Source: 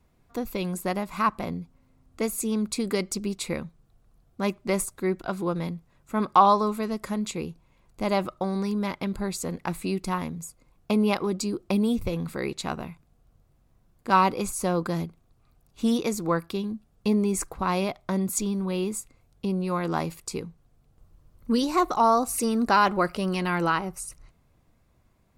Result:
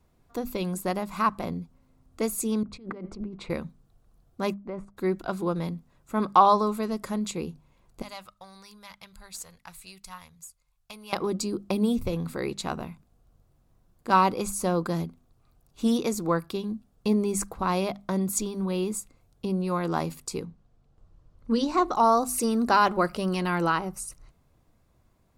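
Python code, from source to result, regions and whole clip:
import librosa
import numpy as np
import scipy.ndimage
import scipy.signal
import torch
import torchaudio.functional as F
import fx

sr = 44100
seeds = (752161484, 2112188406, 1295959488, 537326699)

y = fx.chain(x, sr, fx.lowpass(hz=1600.0, slope=12),
    fx.over_compress(threshold_db=-36.0, ratio=-1.0),
    fx.band_widen(depth_pct=100), at=(2.63, 3.5))
y = fx.chain(y, sr, fx.lowpass(hz=1500.0, slope=12),
    fx.level_steps(step_db=11), at=(4.54, 4.97))
y = fx.chain(y, sr, fx.tone_stack(knobs='10-0-10'),
    fx.tube_stage(drive_db=17.0, bias=0.7), at=(8.02, 11.13))
y = fx.chain(y, sr, fx.air_absorb(metres=76.0),
    fx.hum_notches(base_hz=50, count=8), at=(20.45, 21.95))
y = fx.peak_eq(y, sr, hz=2200.0, db=-3.5, octaves=0.77)
y = fx.hum_notches(y, sr, base_hz=50, count=5)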